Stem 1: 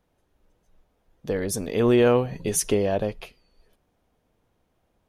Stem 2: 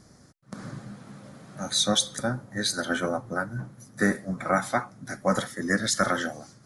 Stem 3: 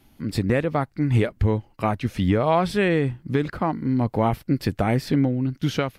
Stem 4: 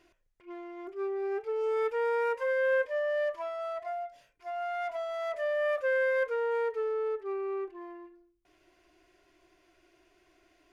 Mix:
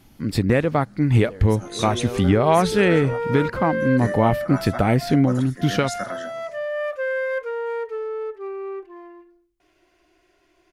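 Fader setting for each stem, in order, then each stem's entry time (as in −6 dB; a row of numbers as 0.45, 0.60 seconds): −13.0, −7.5, +3.0, +3.0 decibels; 0.00, 0.00, 0.00, 1.15 seconds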